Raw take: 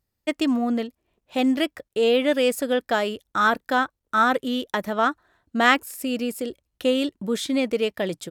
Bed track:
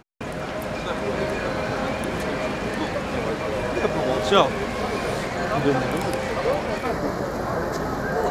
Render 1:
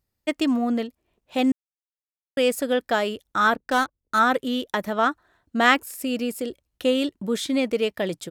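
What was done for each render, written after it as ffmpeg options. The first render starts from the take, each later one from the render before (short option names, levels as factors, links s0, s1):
-filter_complex "[0:a]asplit=3[s0][s1][s2];[s0]afade=t=out:st=3.54:d=0.02[s3];[s1]adynamicsmooth=sensitivity=5.5:basefreq=500,afade=t=in:st=3.54:d=0.02,afade=t=out:st=4.18:d=0.02[s4];[s2]afade=t=in:st=4.18:d=0.02[s5];[s3][s4][s5]amix=inputs=3:normalize=0,asplit=3[s6][s7][s8];[s6]atrim=end=1.52,asetpts=PTS-STARTPTS,afade=t=out:st=1.516:d=0.004:c=hsin[s9];[s7]atrim=start=1.52:end=2.37,asetpts=PTS-STARTPTS,volume=0[s10];[s8]atrim=start=2.37,asetpts=PTS-STARTPTS,afade=t=in:d=0.004:c=hsin[s11];[s9][s10][s11]concat=n=3:v=0:a=1"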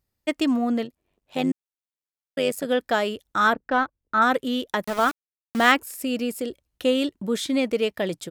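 -filter_complex "[0:a]asplit=3[s0][s1][s2];[s0]afade=t=out:st=0.83:d=0.02[s3];[s1]tremolo=f=96:d=0.667,afade=t=in:st=0.83:d=0.02,afade=t=out:st=2.65:d=0.02[s4];[s2]afade=t=in:st=2.65:d=0.02[s5];[s3][s4][s5]amix=inputs=3:normalize=0,asettb=1/sr,asplit=3[s6][s7][s8];[s6]atrim=end=3.534[s9];[s7]atrim=start=3.53:end=4.22,asetpts=PTS-STARTPTS,afade=t=in:d=0.004:c=qsin,afade=t=out:st=0.686:d=0.004:c=qsin,lowpass=2300[s10];[s8]atrim=start=4.216[s11];[s9][s10]acrossfade=d=0.004:c1=hsin:c2=qsin[s12];[s12][s11]acrossfade=d=0.004:c1=qsin:c2=hsin,asettb=1/sr,asplit=3[s13][s14][s15];[s13]atrim=end=4.844[s16];[s14]atrim=start=4.84:end=5.72,asetpts=PTS-STARTPTS,afade=t=in:d=0.004:c=qsin,afade=t=out:st=0.876:d=0.004:c=qsin,aeval=exprs='val(0)*gte(abs(val(0)),0.0398)':c=same[s17];[s15]atrim=start=5.716[s18];[s16][s17]acrossfade=d=0.004:c1=hsin:c2=qsin[s19];[s19][s18]acrossfade=d=0.004:c1=qsin:c2=hsin"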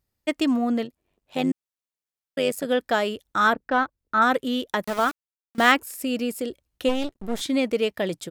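-filter_complex "[0:a]asplit=3[s0][s1][s2];[s0]afade=t=out:st=6.88:d=0.02[s3];[s1]aeval=exprs='max(val(0),0)':c=same,afade=t=in:st=6.88:d=0.02,afade=t=out:st=7.4:d=0.02[s4];[s2]afade=t=in:st=7.4:d=0.02[s5];[s3][s4][s5]amix=inputs=3:normalize=0,asplit=2[s6][s7];[s6]atrim=end=5.58,asetpts=PTS-STARTPTS,afade=t=out:st=4.94:d=0.64:silence=0.0794328[s8];[s7]atrim=start=5.58,asetpts=PTS-STARTPTS,afade=t=in:d=0.004:c=hsin:silence=0.0794328[s9];[s8][s9]concat=n=2:v=0:a=1"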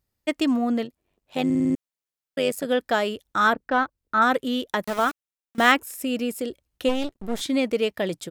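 -filter_complex "[0:a]asettb=1/sr,asplit=3[s0][s1][s2];[s0]atrim=end=4.964[s3];[s1]atrim=start=4.96:end=6.38,asetpts=PTS-STARTPTS,afade=t=in:d=0.004:c=qsin,afade=t=out:st=1.416:d=0.004:c=qsin,bandreject=f=4600:w=11[s4];[s2]atrim=start=6.376[s5];[s3][s4]acrossfade=d=0.004:c1=hsin:c2=qsin[s6];[s6][s5]acrossfade=d=0.004:c1=qsin:c2=hsin,asplit=7[s7][s8][s9][s10][s11][s12][s13];[s7]atrim=end=1.502[s14];[s8]atrim=start=1.448:end=1.502[s15];[s9]atrim=start=1.448:end=1.502[s16];[s10]atrim=start=1.448:end=1.502[s17];[s11]atrim=start=1.448:end=1.502[s18];[s12]atrim=start=1.448:end=1.502[s19];[s13]atrim=start=1.748[s20];[s14][s15]acrossfade=d=0.004:c1=hsin:c2=hsin[s21];[s21][s16]acrossfade=d=0.004:c1=hsin:c2=hsin[s22];[s22][s17]acrossfade=d=0.004:c1=hsin:c2=hsin[s23];[s23][s18]acrossfade=d=0.004:c1=hsin:c2=hsin[s24];[s24][s19]acrossfade=d=0.004:c1=hsin:c2=hsin[s25];[s25][s20]acrossfade=d=0.004:c1=hsin:c2=hsin"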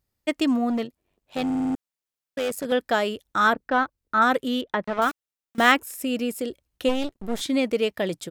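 -filter_complex "[0:a]asettb=1/sr,asplit=3[s0][s1][s2];[s0]atrim=end=0.704[s3];[s1]atrim=start=0.7:end=2.72,asetpts=PTS-STARTPTS,afade=t=in:d=0.004:c=qsin,afade=t=out:st=2.016:d=0.004:c=qsin,volume=12.6,asoftclip=hard,volume=0.0794[s4];[s2]atrim=start=2.716[s5];[s3][s4]acrossfade=d=0.004:c1=hsin:c2=qsin[s6];[s6][s5]acrossfade=d=0.004:c1=qsin:c2=hsin,asettb=1/sr,asplit=3[s7][s8][s9];[s7]atrim=end=4.614[s10];[s8]atrim=start=4.61:end=5.02,asetpts=PTS-STARTPTS,afade=t=in:d=0.004:c=qsin,afade=t=out:st=0.406:d=0.004:c=qsin,lowpass=2600[s11];[s9]atrim=start=5.016[s12];[s10][s11]acrossfade=d=0.004:c1=hsin:c2=qsin[s13];[s13][s12]acrossfade=d=0.004:c1=qsin:c2=hsin"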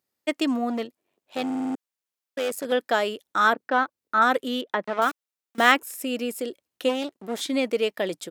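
-af "highpass=260"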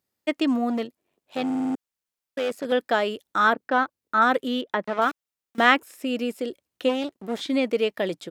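-filter_complex "[0:a]acrossover=split=5000[s0][s1];[s1]acompressor=threshold=0.00355:ratio=4:attack=1:release=60[s2];[s0][s2]amix=inputs=2:normalize=0,lowshelf=f=150:g=8.5"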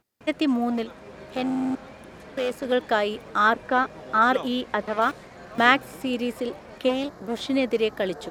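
-filter_complex "[1:a]volume=0.126[s0];[0:a][s0]amix=inputs=2:normalize=0"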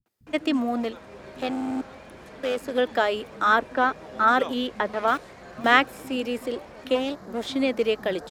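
-filter_complex "[0:a]acrossover=split=180[s0][s1];[s1]adelay=60[s2];[s0][s2]amix=inputs=2:normalize=0"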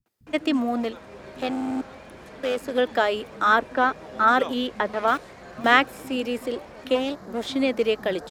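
-af "volume=1.12,alimiter=limit=0.708:level=0:latency=1"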